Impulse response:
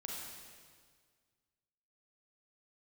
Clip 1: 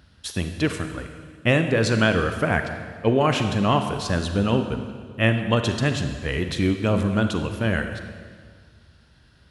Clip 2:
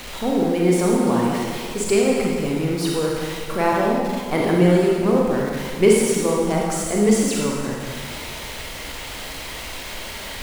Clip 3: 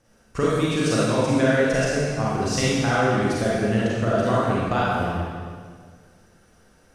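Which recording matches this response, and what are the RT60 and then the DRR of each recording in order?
2; 1.8, 1.8, 1.8 s; 6.5, -3.0, -7.5 dB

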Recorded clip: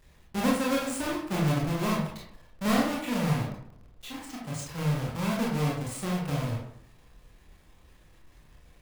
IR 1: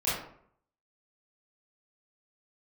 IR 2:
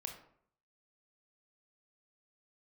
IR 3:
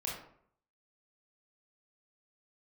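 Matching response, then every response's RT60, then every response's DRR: 3; 0.65, 0.65, 0.65 s; -11.0, 3.0, -4.0 dB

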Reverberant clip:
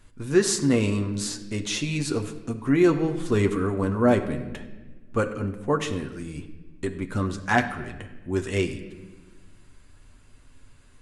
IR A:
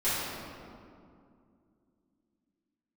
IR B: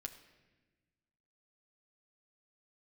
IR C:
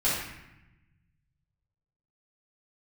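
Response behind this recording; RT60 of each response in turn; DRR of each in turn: B; 2.4, 1.2, 0.90 s; -15.0, 4.0, -11.0 dB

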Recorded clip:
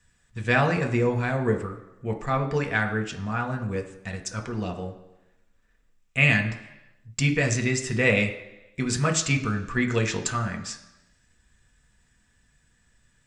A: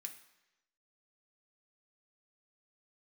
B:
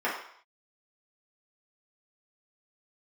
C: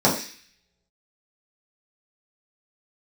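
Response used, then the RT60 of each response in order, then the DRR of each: A; 1.0 s, not exponential, 0.40 s; 3.5, -7.5, -7.0 dB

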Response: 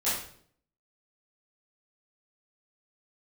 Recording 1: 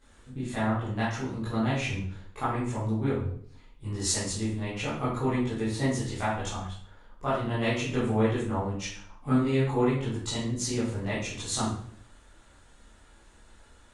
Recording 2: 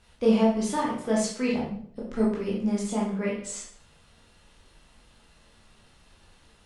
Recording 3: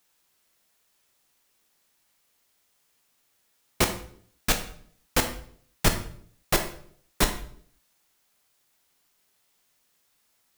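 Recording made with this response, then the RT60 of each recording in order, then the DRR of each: 1; 0.60, 0.60, 0.60 s; -12.5, -5.0, 5.0 dB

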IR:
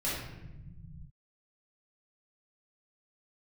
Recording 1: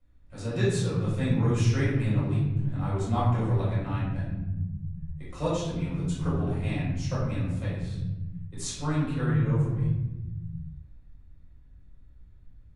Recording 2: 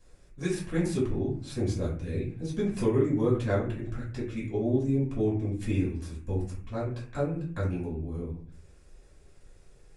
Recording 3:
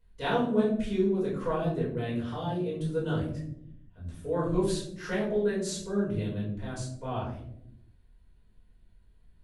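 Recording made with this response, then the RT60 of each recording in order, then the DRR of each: 1; 1.0, 0.45, 0.80 s; -9.0, -7.5, -7.5 dB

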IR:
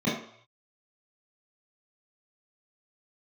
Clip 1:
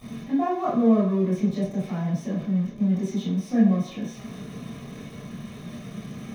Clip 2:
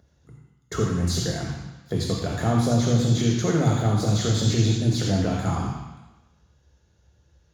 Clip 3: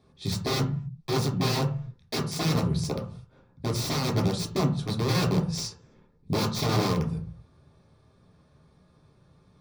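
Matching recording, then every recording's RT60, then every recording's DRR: 1; 0.65, 1.1, 0.45 s; -9.0, -1.5, -1.5 dB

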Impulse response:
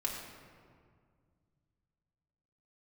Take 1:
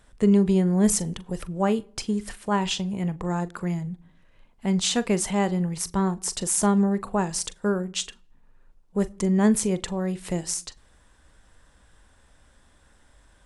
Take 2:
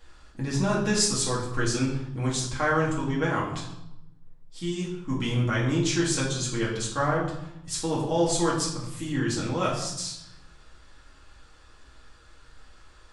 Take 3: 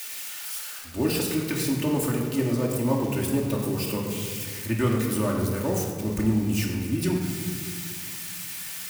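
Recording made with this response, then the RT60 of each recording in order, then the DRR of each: 3; not exponential, 0.85 s, 2.0 s; 15.0, -5.0, -2.5 dB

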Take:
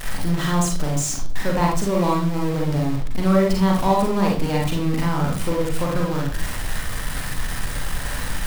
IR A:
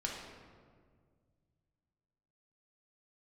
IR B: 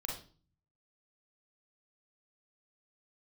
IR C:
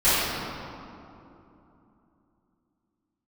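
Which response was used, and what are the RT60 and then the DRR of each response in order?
B; 1.9, 0.40, 2.9 s; -2.0, -1.5, -16.0 dB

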